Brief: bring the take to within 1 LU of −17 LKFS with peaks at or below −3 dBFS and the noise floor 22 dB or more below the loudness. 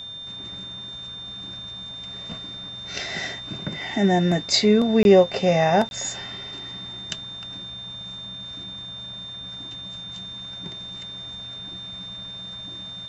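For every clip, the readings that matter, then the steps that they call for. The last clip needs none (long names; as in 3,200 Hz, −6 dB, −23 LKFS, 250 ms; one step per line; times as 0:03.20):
number of dropouts 2; longest dropout 21 ms; interfering tone 3,600 Hz; level of the tone −34 dBFS; integrated loudness −25.5 LKFS; sample peak −4.5 dBFS; target loudness −17.0 LKFS
→ repair the gap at 0:05.03/0:05.89, 21 ms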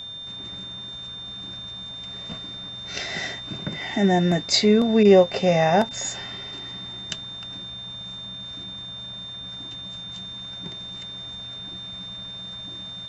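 number of dropouts 0; interfering tone 3,600 Hz; level of the tone −34 dBFS
→ notch filter 3,600 Hz, Q 30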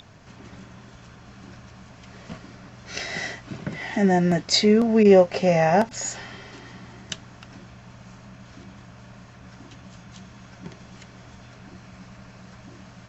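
interfering tone none found; integrated loudness −20.5 LKFS; sample peak −4.5 dBFS; target loudness −17.0 LKFS
→ level +3.5 dB
brickwall limiter −3 dBFS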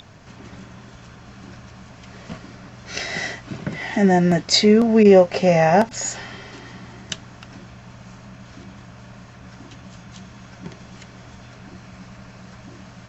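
integrated loudness −17.5 LKFS; sample peak −3.0 dBFS; background noise floor −44 dBFS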